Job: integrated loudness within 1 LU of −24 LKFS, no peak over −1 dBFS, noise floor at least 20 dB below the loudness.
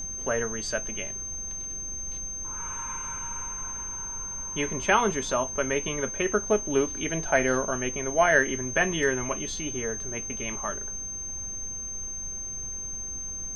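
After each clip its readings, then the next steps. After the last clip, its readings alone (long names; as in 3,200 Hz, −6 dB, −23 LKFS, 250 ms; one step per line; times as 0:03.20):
interfering tone 6,300 Hz; level of the tone −33 dBFS; background noise floor −36 dBFS; target noise floor −48 dBFS; integrated loudness −28.0 LKFS; sample peak −7.5 dBFS; target loudness −24.0 LKFS
→ notch filter 6,300 Hz, Q 30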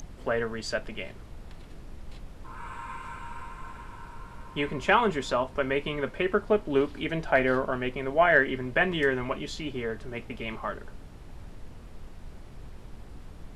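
interfering tone none found; background noise floor −46 dBFS; target noise floor −48 dBFS
→ noise reduction from a noise print 6 dB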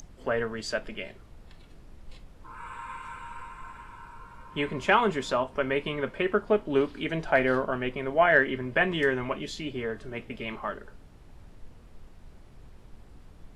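background noise floor −51 dBFS; integrated loudness −28.0 LKFS; sample peak −8.0 dBFS; target loudness −24.0 LKFS
→ level +4 dB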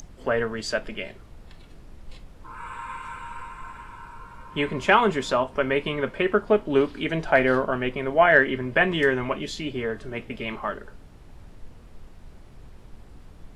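integrated loudness −24.0 LKFS; sample peak −4.0 dBFS; background noise floor −47 dBFS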